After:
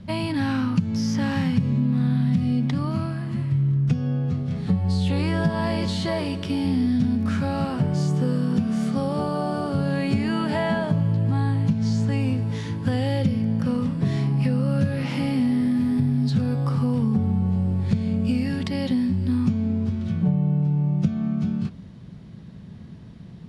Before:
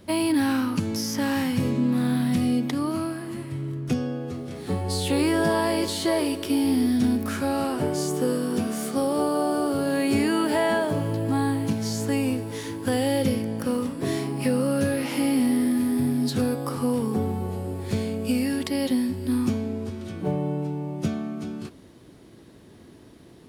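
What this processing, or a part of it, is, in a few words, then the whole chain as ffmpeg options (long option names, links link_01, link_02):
jukebox: -filter_complex "[0:a]asettb=1/sr,asplit=3[link_01][link_02][link_03];[link_01]atrim=end=11.734[link_04];[link_02]atrim=start=11.73:end=12.2,asetpts=PTS-STARTPTS,afade=type=in:duration=0.004:curve=qsin,afade=type=out:start_time=0.466:duration=0.004:curve=qsin,lowpass=11000[link_05];[link_03]atrim=start=12.196[link_06];[link_04][link_05]acrossfade=duration=0.004:curve1=hsin:curve2=qsin[link_07];[link_07][link_06]acrossfade=duration=0.004:curve1=qsin:curve2=hsin,lowpass=5200,lowshelf=frequency=240:width_type=q:width=3:gain=9,acompressor=threshold=-18dB:ratio=5"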